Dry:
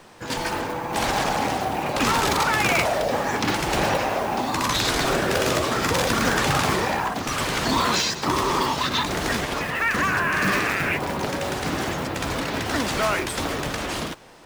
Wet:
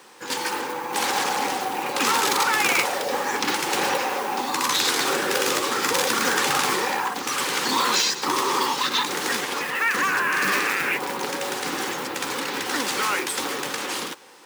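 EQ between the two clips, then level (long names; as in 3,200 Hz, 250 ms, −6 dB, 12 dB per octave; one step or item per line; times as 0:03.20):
high-pass filter 320 Hz 12 dB per octave
Butterworth band-reject 650 Hz, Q 4.5
high-shelf EQ 5,600 Hz +6 dB
0.0 dB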